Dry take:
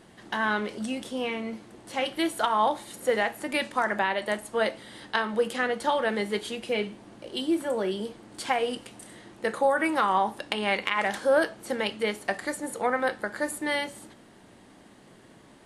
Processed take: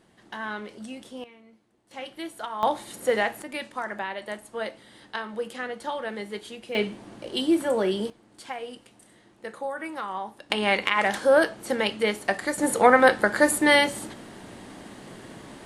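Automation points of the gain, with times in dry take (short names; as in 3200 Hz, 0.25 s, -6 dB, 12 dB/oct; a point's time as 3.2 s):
-7 dB
from 1.24 s -20 dB
from 1.91 s -9 dB
from 2.63 s +1.5 dB
from 3.42 s -6 dB
from 6.75 s +4 dB
from 8.1 s -9 dB
from 10.5 s +3.5 dB
from 12.58 s +10 dB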